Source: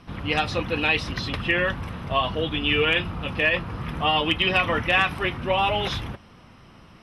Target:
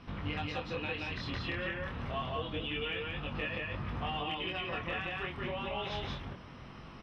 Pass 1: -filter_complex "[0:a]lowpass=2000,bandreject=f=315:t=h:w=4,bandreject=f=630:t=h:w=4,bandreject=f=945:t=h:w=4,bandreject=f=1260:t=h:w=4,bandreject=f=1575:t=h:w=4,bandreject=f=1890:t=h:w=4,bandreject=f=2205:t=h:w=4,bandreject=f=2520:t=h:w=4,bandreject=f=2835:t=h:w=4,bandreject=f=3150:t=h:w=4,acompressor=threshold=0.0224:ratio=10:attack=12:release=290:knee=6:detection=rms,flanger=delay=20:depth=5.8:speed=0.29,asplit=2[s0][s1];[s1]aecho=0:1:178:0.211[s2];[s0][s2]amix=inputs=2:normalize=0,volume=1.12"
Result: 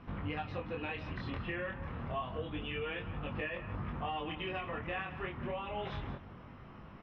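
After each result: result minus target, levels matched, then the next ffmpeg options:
echo-to-direct -12 dB; 4 kHz band -5.5 dB
-filter_complex "[0:a]lowpass=2000,bandreject=f=315:t=h:w=4,bandreject=f=630:t=h:w=4,bandreject=f=945:t=h:w=4,bandreject=f=1260:t=h:w=4,bandreject=f=1575:t=h:w=4,bandreject=f=1890:t=h:w=4,bandreject=f=2205:t=h:w=4,bandreject=f=2520:t=h:w=4,bandreject=f=2835:t=h:w=4,bandreject=f=3150:t=h:w=4,acompressor=threshold=0.0224:ratio=10:attack=12:release=290:knee=6:detection=rms,flanger=delay=20:depth=5.8:speed=0.29,asplit=2[s0][s1];[s1]aecho=0:1:178:0.841[s2];[s0][s2]amix=inputs=2:normalize=0,volume=1.12"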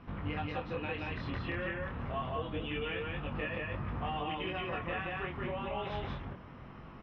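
4 kHz band -5.5 dB
-filter_complex "[0:a]lowpass=4900,bandreject=f=315:t=h:w=4,bandreject=f=630:t=h:w=4,bandreject=f=945:t=h:w=4,bandreject=f=1260:t=h:w=4,bandreject=f=1575:t=h:w=4,bandreject=f=1890:t=h:w=4,bandreject=f=2205:t=h:w=4,bandreject=f=2520:t=h:w=4,bandreject=f=2835:t=h:w=4,bandreject=f=3150:t=h:w=4,acompressor=threshold=0.0224:ratio=10:attack=12:release=290:knee=6:detection=rms,flanger=delay=20:depth=5.8:speed=0.29,asplit=2[s0][s1];[s1]aecho=0:1:178:0.841[s2];[s0][s2]amix=inputs=2:normalize=0,volume=1.12"

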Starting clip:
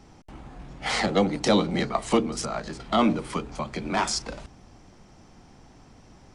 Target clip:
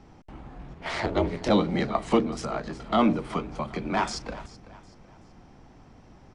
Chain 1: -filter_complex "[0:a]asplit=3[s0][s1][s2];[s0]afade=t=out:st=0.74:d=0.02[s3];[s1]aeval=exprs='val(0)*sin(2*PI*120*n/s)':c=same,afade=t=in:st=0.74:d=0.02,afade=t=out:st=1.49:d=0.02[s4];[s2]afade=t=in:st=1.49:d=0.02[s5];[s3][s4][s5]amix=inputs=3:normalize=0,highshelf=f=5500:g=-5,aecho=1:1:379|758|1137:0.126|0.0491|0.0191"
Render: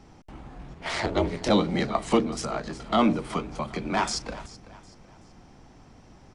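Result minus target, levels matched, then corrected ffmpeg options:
8 kHz band +5.5 dB
-filter_complex "[0:a]asplit=3[s0][s1][s2];[s0]afade=t=out:st=0.74:d=0.02[s3];[s1]aeval=exprs='val(0)*sin(2*PI*120*n/s)':c=same,afade=t=in:st=0.74:d=0.02,afade=t=out:st=1.49:d=0.02[s4];[s2]afade=t=in:st=1.49:d=0.02[s5];[s3][s4][s5]amix=inputs=3:normalize=0,highshelf=f=5500:g=-15,aecho=1:1:379|758|1137:0.126|0.0491|0.0191"

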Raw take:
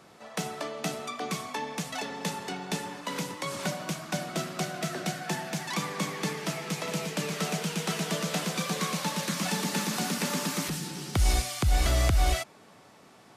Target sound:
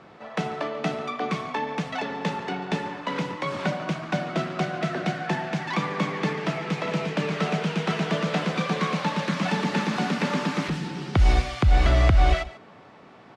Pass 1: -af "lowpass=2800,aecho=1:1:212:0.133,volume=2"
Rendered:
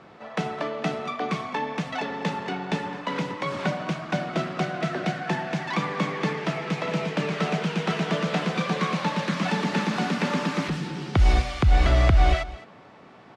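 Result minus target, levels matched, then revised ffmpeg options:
echo 69 ms late
-af "lowpass=2800,aecho=1:1:143:0.133,volume=2"

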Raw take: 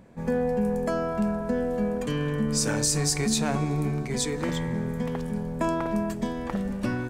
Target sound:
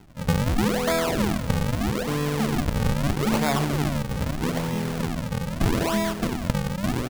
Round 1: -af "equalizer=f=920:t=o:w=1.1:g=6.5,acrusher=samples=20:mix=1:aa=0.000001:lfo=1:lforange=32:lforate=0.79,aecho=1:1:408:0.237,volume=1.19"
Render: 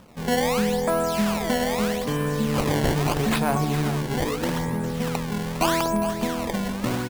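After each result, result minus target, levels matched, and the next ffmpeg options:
decimation with a swept rate: distortion -10 dB; echo-to-direct +7.5 dB
-af "equalizer=f=920:t=o:w=1.1:g=6.5,acrusher=samples=73:mix=1:aa=0.000001:lfo=1:lforange=117:lforate=0.79,aecho=1:1:408:0.237,volume=1.19"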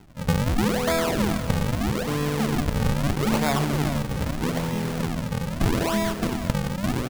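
echo-to-direct +7.5 dB
-af "equalizer=f=920:t=o:w=1.1:g=6.5,acrusher=samples=73:mix=1:aa=0.000001:lfo=1:lforange=117:lforate=0.79,aecho=1:1:408:0.1,volume=1.19"

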